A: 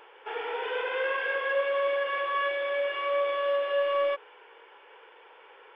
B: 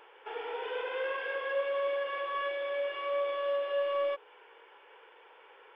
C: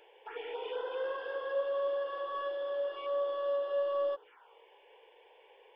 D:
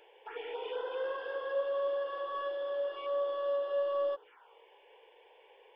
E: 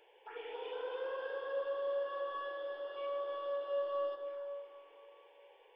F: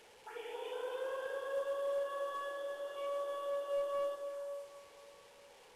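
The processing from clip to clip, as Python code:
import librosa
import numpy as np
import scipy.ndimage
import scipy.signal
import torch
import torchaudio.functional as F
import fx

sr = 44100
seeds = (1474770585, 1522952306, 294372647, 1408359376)

y1 = fx.dynamic_eq(x, sr, hz=1800.0, q=0.91, threshold_db=-43.0, ratio=4.0, max_db=-4)
y1 = y1 * 10.0 ** (-3.5 / 20.0)
y2 = fx.env_phaser(y1, sr, low_hz=180.0, high_hz=2300.0, full_db=-32.5)
y3 = y2
y4 = fx.rev_plate(y3, sr, seeds[0], rt60_s=3.3, hf_ratio=0.75, predelay_ms=0, drr_db=4.5)
y4 = y4 * 10.0 ** (-5.0 / 20.0)
y5 = fx.delta_mod(y4, sr, bps=64000, step_db=-54.5)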